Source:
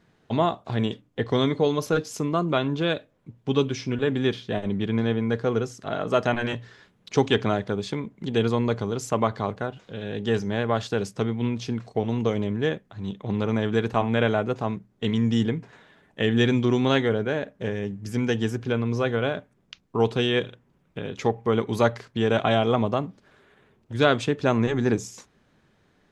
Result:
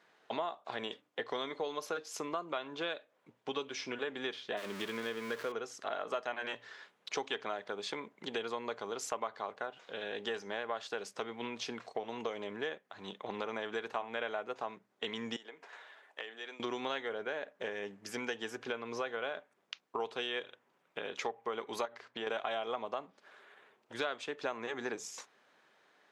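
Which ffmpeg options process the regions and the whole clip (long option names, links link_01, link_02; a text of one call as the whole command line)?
ffmpeg -i in.wav -filter_complex "[0:a]asettb=1/sr,asplit=3[link_01][link_02][link_03];[link_01]atrim=end=4.574[link_04];[link_02]atrim=start=4.57:end=5.52,asetpts=PTS-STARTPTS,afade=type=in:duration=0.004:curve=qsin,afade=type=out:start_time=0.946:duration=0.004:curve=qsin,aeval=exprs='val(0)+0.5*0.0299*sgn(val(0))':channel_layout=same,equalizer=frequency=780:width_type=o:width=0.34:gain=-13.5[link_05];[link_03]atrim=start=5.516[link_06];[link_04][link_05]acrossfade=duration=0.004:curve1=hsin:curve2=qsin[link_07];[link_07][link_06]acrossfade=duration=0.004:curve1=qsin:curve2=hsin,asettb=1/sr,asplit=3[link_08][link_09][link_10];[link_08]atrim=end=15.364[link_11];[link_09]atrim=start=15.36:end=16.6,asetpts=PTS-STARTPTS,afade=type=in:duration=0.004:curve=qsin,afade=type=out:start_time=1.236:duration=0.004:curve=qsin,acompressor=threshold=-34dB:ratio=8:attack=3.2:release=140:knee=1:detection=peak,highpass=410[link_12];[link_10]atrim=start=16.596[link_13];[link_11][link_12]acrossfade=duration=0.004:curve1=hsin:curve2=qsin[link_14];[link_14][link_13]acrossfade=duration=0.004:curve1=qsin:curve2=hsin,asettb=1/sr,asplit=3[link_15][link_16][link_17];[link_15]atrim=end=21.854[link_18];[link_16]atrim=start=21.85:end=22.27,asetpts=PTS-STARTPTS,afade=type=in:duration=0.004:curve=qsin,afade=type=out:start_time=0.416:duration=0.004:curve=qsin,lowpass=frequency=4000:poles=1,bandreject=frequency=60:width_type=h:width=6,bandreject=frequency=120:width_type=h:width=6,bandreject=frequency=180:width_type=h:width=6,bandreject=frequency=240:width_type=h:width=6,bandreject=frequency=300:width_type=h:width=6,bandreject=frequency=360:width_type=h:width=6,acompressor=threshold=-25dB:ratio=6:attack=3.2:release=140:knee=1:detection=peak[link_19];[link_17]atrim=start=22.266[link_20];[link_18][link_19]acrossfade=duration=0.004:curve1=hsin:curve2=qsin[link_21];[link_21][link_20]acrossfade=duration=0.004:curve1=qsin:curve2=hsin,highpass=620,highshelf=frequency=5500:gain=-6.5,acompressor=threshold=-37dB:ratio=4,volume=1.5dB" out.wav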